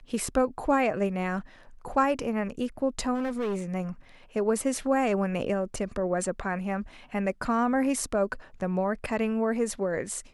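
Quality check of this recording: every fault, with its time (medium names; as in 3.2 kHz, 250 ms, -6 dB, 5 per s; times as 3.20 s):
3.14–3.62 s: clipped -26 dBFS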